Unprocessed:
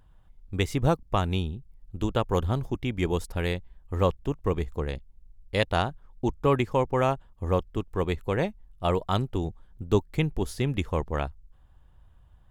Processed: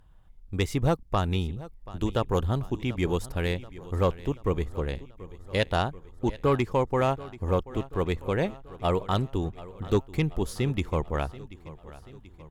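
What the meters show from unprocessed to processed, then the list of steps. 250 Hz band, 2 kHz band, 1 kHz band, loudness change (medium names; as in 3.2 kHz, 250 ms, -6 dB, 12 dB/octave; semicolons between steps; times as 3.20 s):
0.0 dB, -0.5 dB, -1.0 dB, -0.5 dB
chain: sine folder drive 3 dB, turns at -7.5 dBFS; feedback delay 734 ms, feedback 57%, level -18 dB; trim -6.5 dB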